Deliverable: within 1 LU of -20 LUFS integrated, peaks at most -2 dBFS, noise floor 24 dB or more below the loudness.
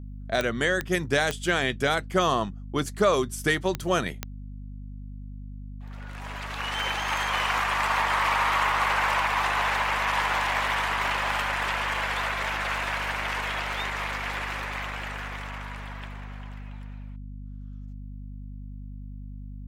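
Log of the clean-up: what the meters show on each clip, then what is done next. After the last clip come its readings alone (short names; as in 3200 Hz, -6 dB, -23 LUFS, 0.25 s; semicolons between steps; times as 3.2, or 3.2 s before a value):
clicks 5; hum 50 Hz; harmonics up to 250 Hz; hum level -36 dBFS; loudness -26.0 LUFS; peak -10.5 dBFS; loudness target -20.0 LUFS
-> de-click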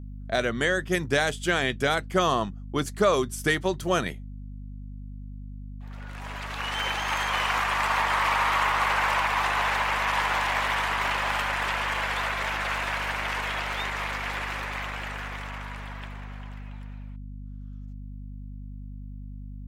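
clicks 0; hum 50 Hz; harmonics up to 250 Hz; hum level -36 dBFS
-> notches 50/100/150/200/250 Hz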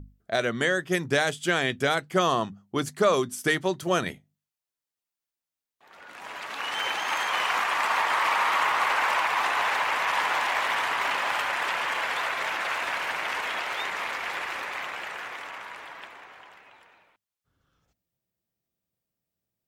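hum none; loudness -26.0 LUFS; peak -10.0 dBFS; loudness target -20.0 LUFS
-> gain +6 dB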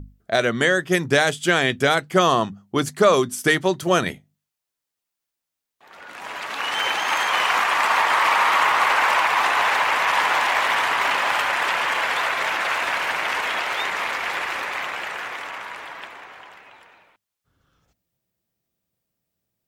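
loudness -20.0 LUFS; peak -4.0 dBFS; noise floor -84 dBFS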